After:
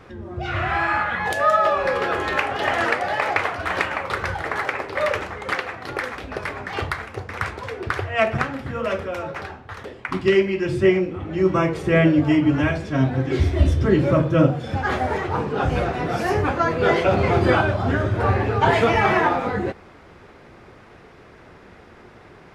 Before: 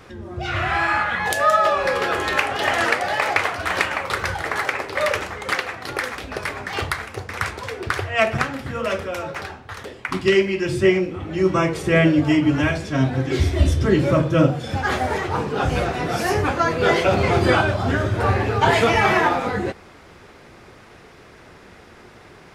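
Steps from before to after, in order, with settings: high shelf 3800 Hz -11 dB

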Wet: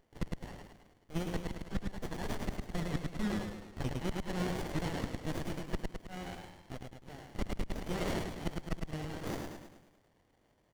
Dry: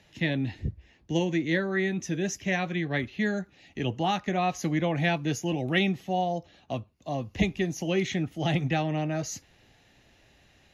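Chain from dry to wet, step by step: G.711 law mismatch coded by A; HPF 1300 Hz 24 dB/oct; dynamic EQ 2500 Hz, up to +3 dB, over -44 dBFS, Q 0.79; in parallel at -3 dB: hard clip -28.5 dBFS, distortion -8 dB; on the sum: flipped gate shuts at -19 dBFS, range -38 dB; on a send: frequency-shifting echo 0.106 s, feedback 53%, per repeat +57 Hz, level -3.5 dB; on the sum: running maximum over 33 samples

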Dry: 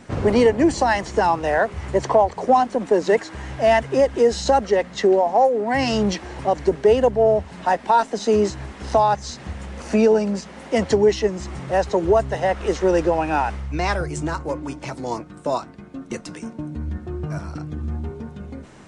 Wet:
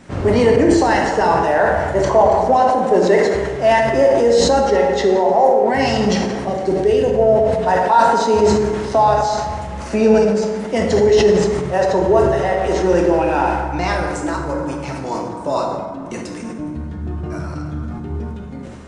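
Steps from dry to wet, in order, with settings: 6.48–7.09 bell 940 Hz -11 dB 1.3 oct; plate-style reverb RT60 1.8 s, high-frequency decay 0.5×, DRR 0 dB; sustainer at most 31 dB/s

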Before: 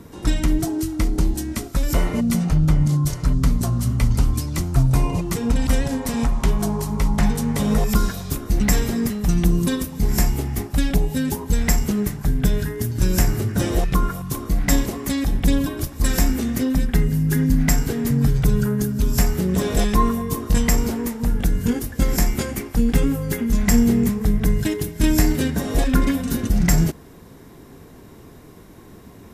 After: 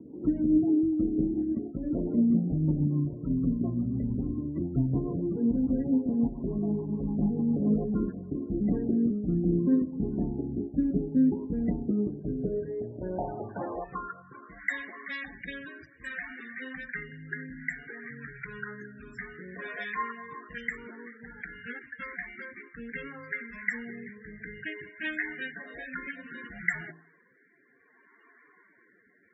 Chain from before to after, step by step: de-hum 54.68 Hz, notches 20; band-pass sweep 290 Hz -> 1800 Hz, 11.96–14.68; rotary speaker horn 7 Hz, later 0.6 Hz, at 8.05; loudest bins only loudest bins 32; gain +3 dB

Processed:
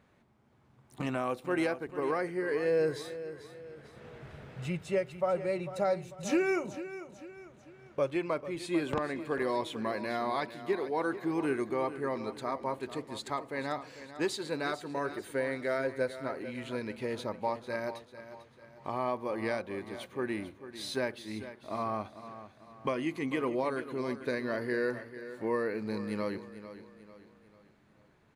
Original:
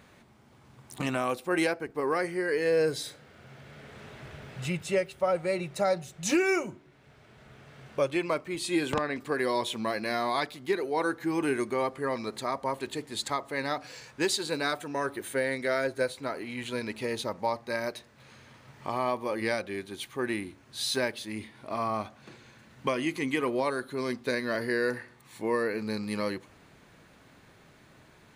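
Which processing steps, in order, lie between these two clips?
gate -47 dBFS, range -6 dB; high shelf 2500 Hz -9 dB; on a send: feedback echo 0.445 s, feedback 43%, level -13 dB; on the sum: gain -2.5 dB

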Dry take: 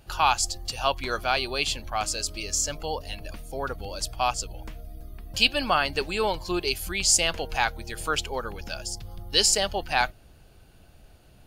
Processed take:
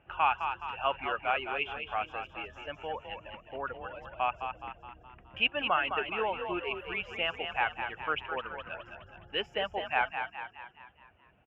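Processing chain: HPF 44 Hz 24 dB/oct; reverb removal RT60 0.83 s; elliptic low-pass 2800 Hz, stop band 40 dB; low shelf 270 Hz -9 dB; frequency-shifting echo 0.21 s, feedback 51%, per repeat +34 Hz, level -7 dB; gain -3.5 dB

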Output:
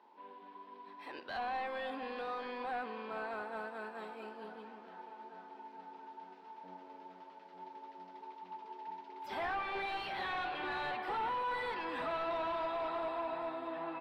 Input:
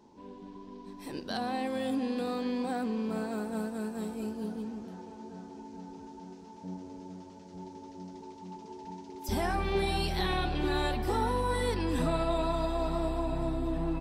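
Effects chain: HPF 960 Hz 12 dB/oct; hard clip -38.5 dBFS, distortion -8 dB; air absorption 450 m; gain +7 dB

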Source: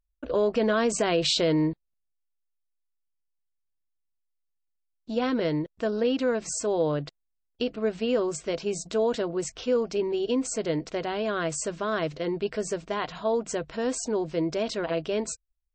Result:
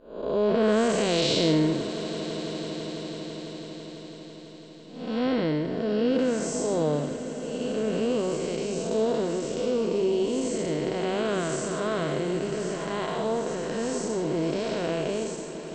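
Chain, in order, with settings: time blur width 0.309 s; swelling echo 0.166 s, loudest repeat 5, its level -17 dB; gain +5 dB

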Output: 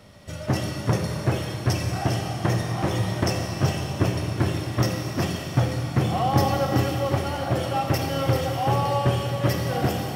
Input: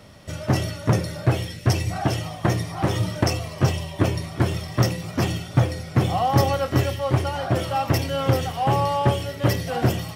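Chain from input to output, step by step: Schroeder reverb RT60 3.8 s, combs from 29 ms, DRR 2.5 dB; gain -3 dB

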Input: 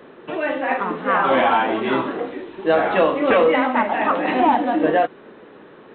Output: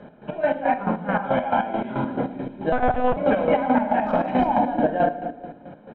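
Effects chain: 4.01–4.47 hard clip -11.5 dBFS, distortion -29 dB; tilt shelf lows +7 dB, about 810 Hz; split-band echo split 530 Hz, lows 0.229 s, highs 0.111 s, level -11.5 dB; shoebox room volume 930 m³, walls furnished, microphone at 1.3 m; 0.89–2.05 compressor 3:1, threshold -17 dBFS, peak gain reduction 6.5 dB; air absorption 68 m; comb 1.3 ms, depth 73%; de-hum 236.4 Hz, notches 37; 2.72–3.17 monotone LPC vocoder at 8 kHz 250 Hz; chopper 4.6 Hz, depth 65%, duty 40%; maximiser +7 dB; gain -8.5 dB

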